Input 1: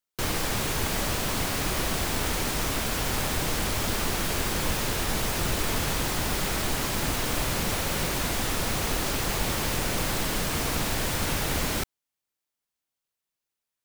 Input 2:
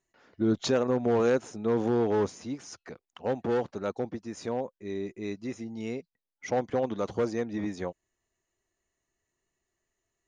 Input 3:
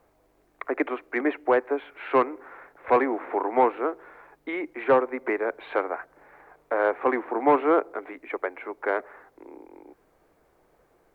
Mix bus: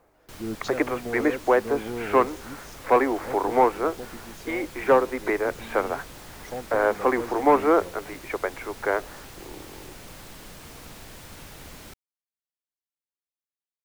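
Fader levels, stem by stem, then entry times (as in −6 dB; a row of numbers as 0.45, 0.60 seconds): −16.0, −7.0, +1.5 decibels; 0.10, 0.00, 0.00 seconds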